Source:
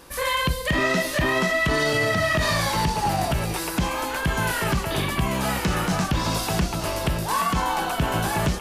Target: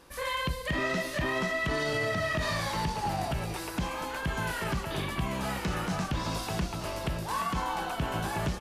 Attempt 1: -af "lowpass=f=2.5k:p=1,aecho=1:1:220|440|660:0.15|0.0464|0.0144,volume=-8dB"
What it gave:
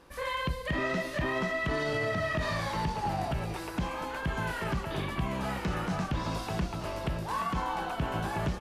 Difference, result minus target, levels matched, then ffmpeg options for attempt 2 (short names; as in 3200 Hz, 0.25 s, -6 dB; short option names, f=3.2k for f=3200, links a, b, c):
8000 Hz band -5.5 dB
-af "lowpass=f=7.1k:p=1,aecho=1:1:220|440|660:0.15|0.0464|0.0144,volume=-8dB"